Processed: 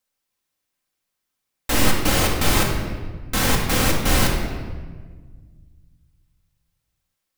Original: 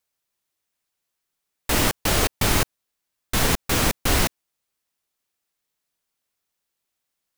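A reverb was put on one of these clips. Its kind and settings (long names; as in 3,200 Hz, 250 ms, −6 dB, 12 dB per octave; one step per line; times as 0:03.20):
rectangular room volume 1,600 cubic metres, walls mixed, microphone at 2.1 metres
level −1.5 dB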